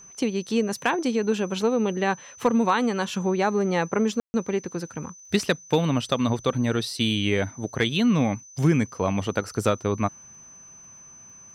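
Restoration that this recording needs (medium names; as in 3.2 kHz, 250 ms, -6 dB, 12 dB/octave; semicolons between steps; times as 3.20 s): clip repair -10.5 dBFS; de-click; band-stop 6.1 kHz, Q 30; room tone fill 4.20–4.34 s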